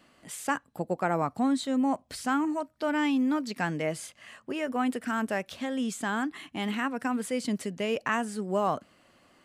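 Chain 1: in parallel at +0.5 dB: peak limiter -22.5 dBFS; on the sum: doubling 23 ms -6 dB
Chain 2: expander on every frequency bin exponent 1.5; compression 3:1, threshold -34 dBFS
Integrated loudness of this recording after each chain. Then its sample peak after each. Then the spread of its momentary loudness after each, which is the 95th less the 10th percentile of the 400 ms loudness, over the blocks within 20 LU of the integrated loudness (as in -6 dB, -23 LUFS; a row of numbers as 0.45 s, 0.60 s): -24.0 LUFS, -38.0 LUFS; -8.5 dBFS, -22.5 dBFS; 7 LU, 6 LU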